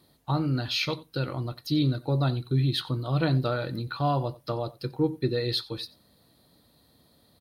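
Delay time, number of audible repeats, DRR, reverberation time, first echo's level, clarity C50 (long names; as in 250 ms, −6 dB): 90 ms, 1, no reverb audible, no reverb audible, −21.0 dB, no reverb audible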